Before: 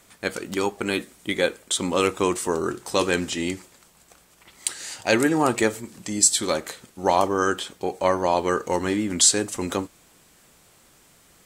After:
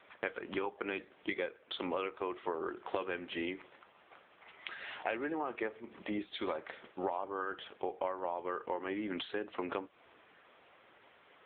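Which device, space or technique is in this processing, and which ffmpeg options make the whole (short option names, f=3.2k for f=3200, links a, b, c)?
voicemail: -af "highpass=390,lowpass=3k,acompressor=threshold=-35dB:ratio=12,volume=3dB" -ar 8000 -c:a libopencore_amrnb -b:a 6700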